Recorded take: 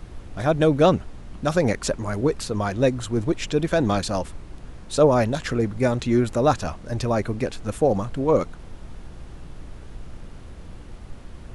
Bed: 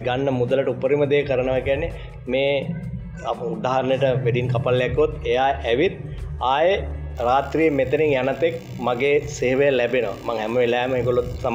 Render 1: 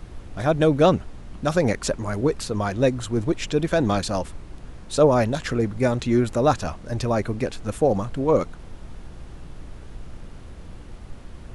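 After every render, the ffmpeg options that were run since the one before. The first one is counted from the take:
-af anull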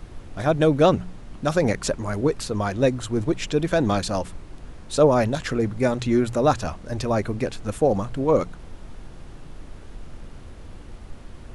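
-af "bandreject=f=60:t=h:w=4,bandreject=f=120:t=h:w=4,bandreject=f=180:t=h:w=4"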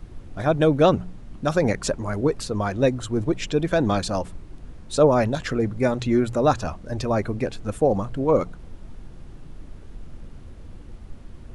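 -af "afftdn=nr=6:nf=-41"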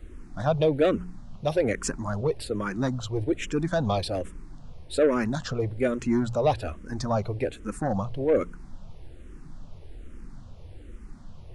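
-filter_complex "[0:a]asoftclip=type=tanh:threshold=-12.5dB,asplit=2[a][b];[b]afreqshift=-1.2[c];[a][c]amix=inputs=2:normalize=1"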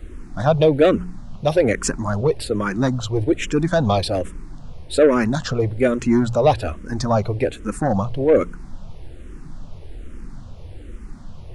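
-af "volume=7.5dB"

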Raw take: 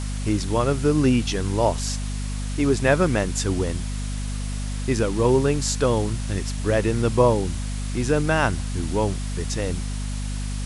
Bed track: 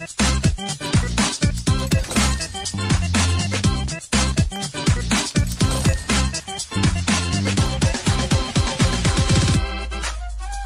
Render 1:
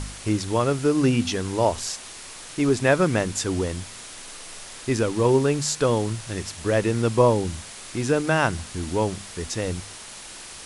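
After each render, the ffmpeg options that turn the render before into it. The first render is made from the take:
-af "bandreject=f=50:t=h:w=4,bandreject=f=100:t=h:w=4,bandreject=f=150:t=h:w=4,bandreject=f=200:t=h:w=4,bandreject=f=250:t=h:w=4"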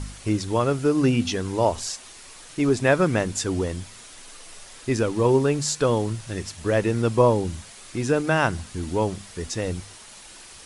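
-af "afftdn=nr=6:nf=-40"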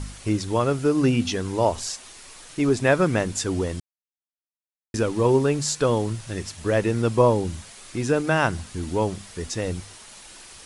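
-filter_complex "[0:a]asplit=3[a][b][c];[a]atrim=end=3.8,asetpts=PTS-STARTPTS,afade=t=out:st=3.796:d=0.004:c=hsin[d];[b]atrim=start=3.8:end=4.94,asetpts=PTS-STARTPTS,volume=0[e];[c]atrim=start=4.94,asetpts=PTS-STARTPTS,afade=t=in:d=0.004:c=hsin[f];[d][e][f]concat=n=3:v=0:a=1"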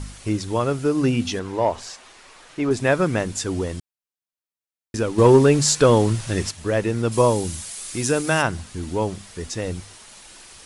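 -filter_complex "[0:a]asettb=1/sr,asplit=3[a][b][c];[a]atrim=end=1.394[d];[b]atrim=start=1.39:end=2.71,asetpts=PTS-STARTPTS,afade=t=in:d=0.004:c=qsin,afade=t=out:st=1.316:d=0.004:c=qsin,asplit=2[e][f];[f]highpass=f=720:p=1,volume=10dB,asoftclip=type=tanh:threshold=-7.5dB[g];[e][g]amix=inputs=2:normalize=0,lowpass=f=1.4k:p=1,volume=-6dB[h];[c]atrim=start=2.706[i];[d][h]acrossfade=d=0.004:c1=hsin:c2=qsin[j];[j][i]acrossfade=d=0.004:c1=qsin:c2=hsin,asettb=1/sr,asplit=3[k][l][m];[k]atrim=end=5.184[n];[l]atrim=start=5.18:end=6.51,asetpts=PTS-STARTPTS,afade=t=in:d=0.004:c=qsin,afade=t=out:st=1.326:d=0.004:c=qsin,acontrast=86[o];[m]atrim=start=6.506[p];[n][o]acrossfade=d=0.004:c1=hsin:c2=qsin[q];[q][p]acrossfade=d=0.004:c1=qsin:c2=hsin,asplit=3[r][s][t];[r]afade=t=out:st=7.11:d=0.02[u];[s]aemphasis=mode=production:type=75kf,afade=t=in:st=7.11:d=0.02,afade=t=out:st=8.41:d=0.02[v];[t]afade=t=in:st=8.41:d=0.02[w];[u][v][w]amix=inputs=3:normalize=0"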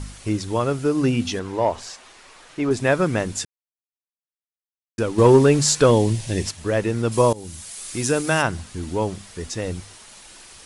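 -filter_complex "[0:a]asettb=1/sr,asplit=3[a][b][c];[a]atrim=end=5.914[d];[b]atrim=start=5.91:end=6.47,asetpts=PTS-STARTPTS,afade=t=in:d=0.004:c=qsin,afade=t=out:st=0.556:d=0.004:c=qsin,equalizer=f=1.3k:t=o:w=0.55:g=-13.5[e];[c]atrim=start=6.466[f];[d][e]acrossfade=d=0.004:c1=hsin:c2=qsin[g];[g][f]acrossfade=d=0.004:c1=qsin:c2=hsin,asplit=4[h][i][j][k];[h]atrim=end=3.45,asetpts=PTS-STARTPTS,afade=t=out:st=3.446:d=0.004:c=hsin[l];[i]atrim=start=3.45:end=4.98,asetpts=PTS-STARTPTS,volume=0[m];[j]atrim=start=4.98:end=7.33,asetpts=PTS-STARTPTS,afade=t=in:d=0.004:c=hsin,afade=t=out:st=2.346:d=0.004:c=hsin:silence=0.105925[n];[k]atrim=start=7.33,asetpts=PTS-STARTPTS,afade=t=in:d=0.72:c=qsin:silence=0.105925[o];[l][m][n][o]concat=n=4:v=0:a=1"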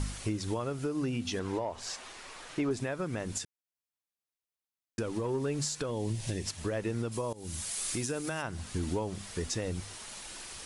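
-af "acompressor=threshold=-25dB:ratio=12,alimiter=limit=-23dB:level=0:latency=1:release=440"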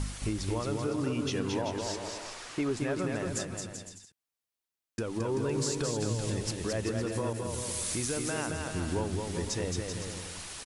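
-af "aecho=1:1:220|385|508.8|601.6|671.2:0.631|0.398|0.251|0.158|0.1"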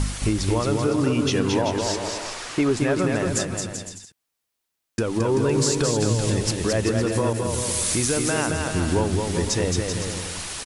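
-af "volume=10dB"

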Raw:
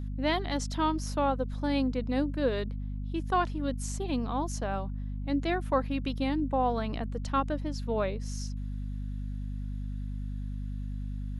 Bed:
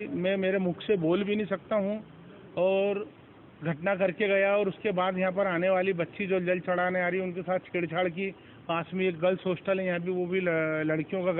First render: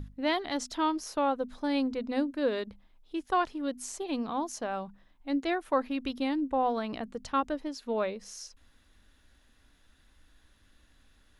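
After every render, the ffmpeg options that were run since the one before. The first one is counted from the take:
-af "bandreject=f=50:t=h:w=6,bandreject=f=100:t=h:w=6,bandreject=f=150:t=h:w=6,bandreject=f=200:t=h:w=6,bandreject=f=250:t=h:w=6"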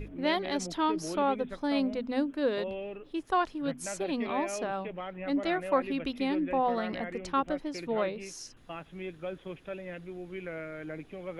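-filter_complex "[1:a]volume=-12dB[a];[0:a][a]amix=inputs=2:normalize=0"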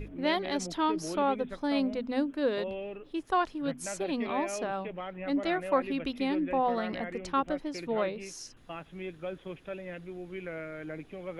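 -af anull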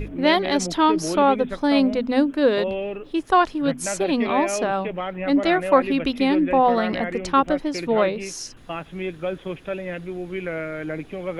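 -af "volume=10.5dB"

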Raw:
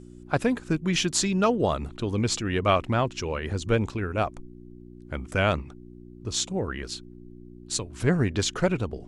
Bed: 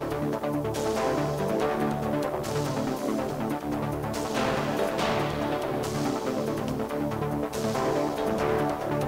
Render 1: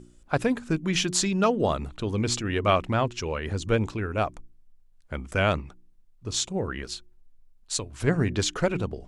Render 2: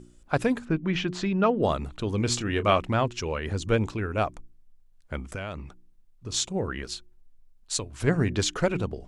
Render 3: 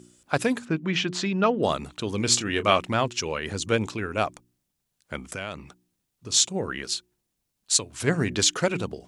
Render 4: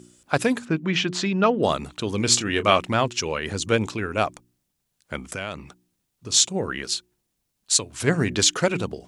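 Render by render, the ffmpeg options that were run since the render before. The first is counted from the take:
-af "bandreject=f=60:t=h:w=4,bandreject=f=120:t=h:w=4,bandreject=f=180:t=h:w=4,bandreject=f=240:t=h:w=4,bandreject=f=300:t=h:w=4,bandreject=f=360:t=h:w=4"
-filter_complex "[0:a]asettb=1/sr,asplit=3[a][b][c];[a]atrim=end=0.654[d];[b]atrim=start=0.65:end=1.63,asetpts=PTS-STARTPTS,afade=t=in:d=0.004:c=qsin,afade=t=out:st=0.976:d=0.004:c=qsin,lowpass=2.5k[e];[c]atrim=start=1.626[f];[d][e]acrossfade=d=0.004:c1=hsin:c2=qsin[g];[g][f]acrossfade=d=0.004:c1=qsin:c2=hsin,asettb=1/sr,asplit=3[h][i][j];[h]atrim=end=2.184[k];[i]atrim=start=2.18:end=2.79,asetpts=PTS-STARTPTS,afade=t=in:d=0.004:c=qsin,afade=t=out:st=0.606:d=0.004:c=qsin,asplit=2[l][m];[m]adelay=25,volume=-12dB[n];[l][n]amix=inputs=2:normalize=0,atrim=end_sample=26901[o];[j]atrim=start=2.786[p];[k][o]acrossfade=d=0.004:c1=hsin:c2=qsin[q];[q][p]acrossfade=d=0.004:c1=qsin:c2=hsin,asettb=1/sr,asplit=3[r][s][t];[r]atrim=end=5.184[u];[s]atrim=start=5.18:end=6.34,asetpts=PTS-STARTPTS,afade=t=in:d=0.004:c=qsin,afade=t=out:st=1.156:d=0.004:c=qsin,acompressor=threshold=-30dB:ratio=10:attack=3.2:release=140:knee=1:detection=peak[v];[t]atrim=start=6.336[w];[u][v]acrossfade=d=0.004:c1=hsin:c2=qsin[x];[x][w]acrossfade=d=0.004:c1=qsin:c2=hsin"
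-af "highpass=120,highshelf=f=2.6k:g=9.5"
-af "volume=2.5dB,alimiter=limit=-2dB:level=0:latency=1"

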